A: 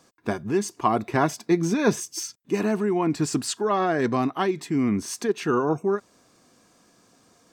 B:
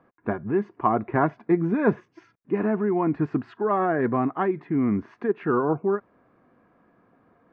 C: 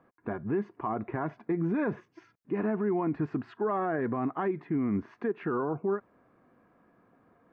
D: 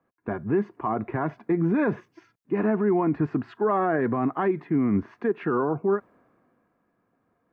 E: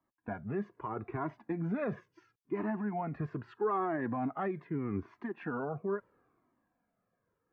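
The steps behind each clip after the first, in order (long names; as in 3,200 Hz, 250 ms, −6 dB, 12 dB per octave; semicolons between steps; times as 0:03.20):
low-pass filter 1,900 Hz 24 dB per octave
brickwall limiter −18.5 dBFS, peak gain reduction 10.5 dB; level −3 dB
multiband upward and downward expander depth 40%; level +6 dB
flanger whose copies keep moving one way falling 0.77 Hz; level −4.5 dB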